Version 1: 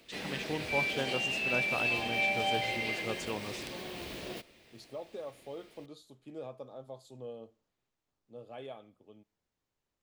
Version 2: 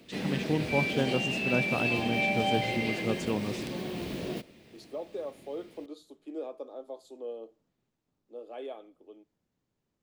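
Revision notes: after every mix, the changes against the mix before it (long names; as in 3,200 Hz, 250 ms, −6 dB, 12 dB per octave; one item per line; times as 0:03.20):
second voice: add Butterworth high-pass 290 Hz 48 dB per octave
master: add parametric band 190 Hz +12 dB 2.4 octaves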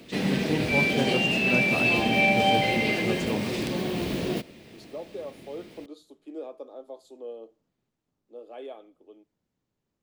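background +7.0 dB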